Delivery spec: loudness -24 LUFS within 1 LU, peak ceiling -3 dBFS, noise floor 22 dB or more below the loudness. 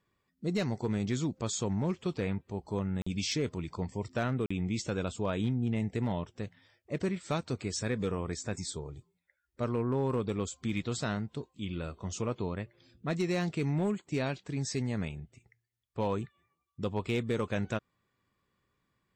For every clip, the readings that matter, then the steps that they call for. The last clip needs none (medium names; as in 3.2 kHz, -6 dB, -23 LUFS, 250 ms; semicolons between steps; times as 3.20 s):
clipped samples 0.4%; clipping level -23.0 dBFS; dropouts 2; longest dropout 45 ms; loudness -34.0 LUFS; peak level -23.0 dBFS; loudness target -24.0 LUFS
-> clip repair -23 dBFS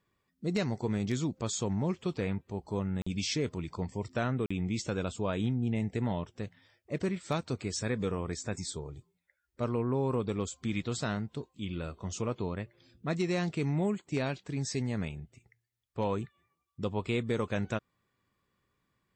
clipped samples 0.0%; dropouts 2; longest dropout 45 ms
-> interpolate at 3.02/4.46 s, 45 ms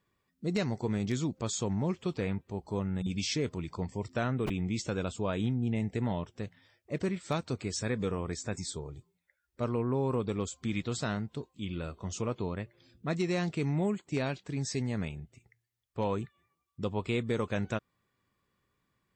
dropouts 0; loudness -34.0 LUFS; peak level -16.0 dBFS; loudness target -24.0 LUFS
-> trim +10 dB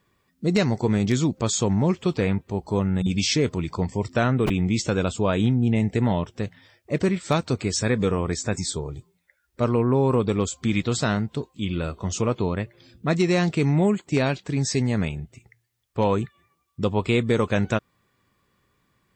loudness -24.0 LUFS; peak level -6.0 dBFS; noise floor -70 dBFS